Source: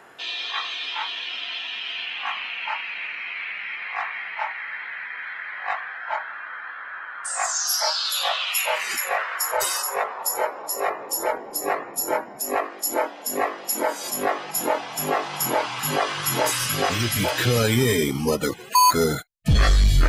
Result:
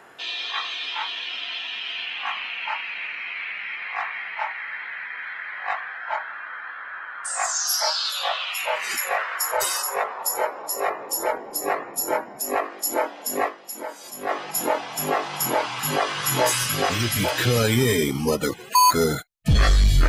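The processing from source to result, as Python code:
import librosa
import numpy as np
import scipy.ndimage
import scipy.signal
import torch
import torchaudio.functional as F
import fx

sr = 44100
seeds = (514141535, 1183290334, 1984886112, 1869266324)

y = fx.high_shelf(x, sr, hz=fx.line((8.1, 6200.0), (8.82, 4100.0)), db=-10.5, at=(8.1, 8.82), fade=0.02)
y = fx.doubler(y, sr, ms=16.0, db=-5.5, at=(16.15, 16.63))
y = fx.edit(y, sr, fx.fade_down_up(start_s=13.47, length_s=0.84, db=-9.5, fade_s=0.39, curve='exp'), tone=tone)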